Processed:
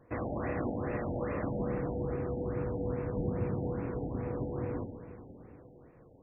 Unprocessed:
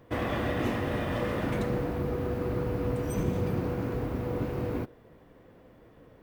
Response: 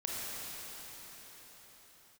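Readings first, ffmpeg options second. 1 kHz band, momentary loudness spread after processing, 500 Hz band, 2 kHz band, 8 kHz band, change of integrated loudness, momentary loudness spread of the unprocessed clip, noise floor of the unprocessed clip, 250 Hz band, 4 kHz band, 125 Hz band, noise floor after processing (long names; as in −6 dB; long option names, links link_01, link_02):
−5.0 dB, 15 LU, −3.5 dB, −8.5 dB, below −30 dB, −4.0 dB, 3 LU, −56 dBFS, −4.0 dB, below −35 dB, −4.0 dB, −58 dBFS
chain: -filter_complex "[0:a]asplit=2[link_01][link_02];[1:a]atrim=start_sample=2205,asetrate=61740,aresample=44100[link_03];[link_02][link_03]afir=irnorm=-1:irlink=0,volume=-5.5dB[link_04];[link_01][link_04]amix=inputs=2:normalize=0,afftfilt=real='re*lt(b*sr/1024,870*pow(2800/870,0.5+0.5*sin(2*PI*2.4*pts/sr)))':imag='im*lt(b*sr/1024,870*pow(2800/870,0.5+0.5*sin(2*PI*2.4*pts/sr)))':win_size=1024:overlap=0.75,volume=-7dB"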